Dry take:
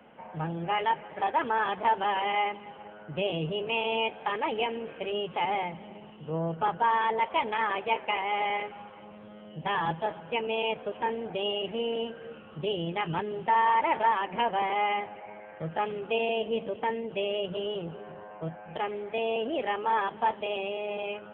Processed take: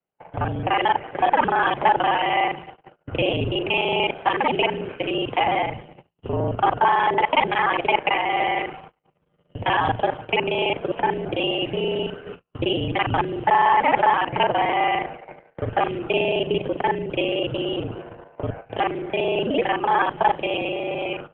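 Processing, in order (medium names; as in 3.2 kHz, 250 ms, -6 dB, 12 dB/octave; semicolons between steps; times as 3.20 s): time reversed locally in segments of 37 ms; gate -43 dBFS, range -42 dB; frequency shift -50 Hz; harmonic-percussive split percussive +5 dB; trim +6.5 dB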